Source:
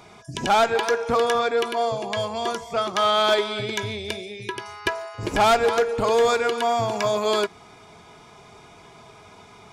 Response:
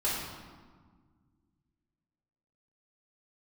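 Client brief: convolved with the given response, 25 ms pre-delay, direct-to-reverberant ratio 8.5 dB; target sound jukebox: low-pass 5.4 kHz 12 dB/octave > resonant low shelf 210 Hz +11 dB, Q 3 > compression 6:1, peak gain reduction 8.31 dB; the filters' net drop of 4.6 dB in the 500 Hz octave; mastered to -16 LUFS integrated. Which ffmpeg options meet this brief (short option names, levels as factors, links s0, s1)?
-filter_complex "[0:a]equalizer=f=500:t=o:g=-3,asplit=2[s0][s1];[1:a]atrim=start_sample=2205,adelay=25[s2];[s1][s2]afir=irnorm=-1:irlink=0,volume=0.141[s3];[s0][s3]amix=inputs=2:normalize=0,lowpass=5400,lowshelf=f=210:t=q:w=3:g=11,acompressor=threshold=0.0891:ratio=6,volume=3.35"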